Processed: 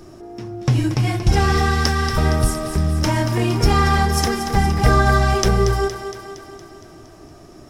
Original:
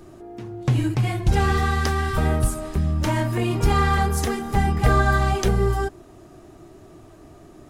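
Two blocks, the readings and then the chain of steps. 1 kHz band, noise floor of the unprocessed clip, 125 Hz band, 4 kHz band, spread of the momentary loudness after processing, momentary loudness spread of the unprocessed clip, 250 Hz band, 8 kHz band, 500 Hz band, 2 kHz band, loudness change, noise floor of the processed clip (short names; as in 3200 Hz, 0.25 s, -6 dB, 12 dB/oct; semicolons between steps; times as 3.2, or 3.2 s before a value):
+3.5 dB, -47 dBFS, +3.0 dB, +7.5 dB, 15 LU, 7 LU, +4.0 dB, +6.0 dB, +4.0 dB, +3.5 dB, +3.5 dB, -43 dBFS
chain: bell 5400 Hz +13.5 dB 0.22 oct; on a send: thinning echo 0.232 s, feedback 61%, high-pass 240 Hz, level -9 dB; on the sum: gain +3 dB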